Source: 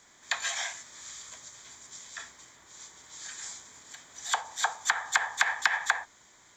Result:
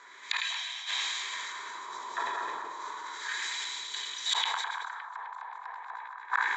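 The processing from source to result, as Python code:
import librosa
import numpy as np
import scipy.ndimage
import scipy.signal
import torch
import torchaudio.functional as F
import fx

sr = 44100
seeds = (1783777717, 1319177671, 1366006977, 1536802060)

p1 = fx.reverse_delay_fb(x, sr, ms=114, feedback_pct=60, wet_db=-3)
p2 = fx.rider(p1, sr, range_db=3, speed_s=2.0)
p3 = fx.small_body(p2, sr, hz=(390.0, 980.0, 3900.0), ring_ms=25, db=14)
p4 = p3 + fx.echo_stepped(p3, sr, ms=102, hz=2700.0, octaves=-1.4, feedback_pct=70, wet_db=-2.5, dry=0)
p5 = fx.filter_lfo_bandpass(p4, sr, shape='sine', hz=0.31, low_hz=840.0, high_hz=3100.0, q=1.7)
p6 = fx.gate_flip(p5, sr, shuts_db=-22.0, range_db=-26)
p7 = fx.sustainer(p6, sr, db_per_s=21.0)
y = p7 * 10.0 ** (7.5 / 20.0)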